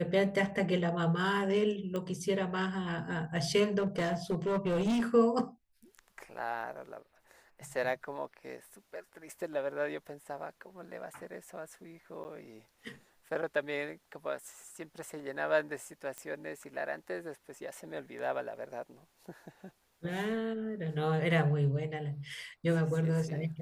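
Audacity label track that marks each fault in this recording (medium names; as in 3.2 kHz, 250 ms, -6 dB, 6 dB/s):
1.960000	1.960000	pop -24 dBFS
3.780000	5.030000	clipped -26.5 dBFS
12.240000	12.250000	dropout 9.2 ms
16.180000	16.180000	pop -25 dBFS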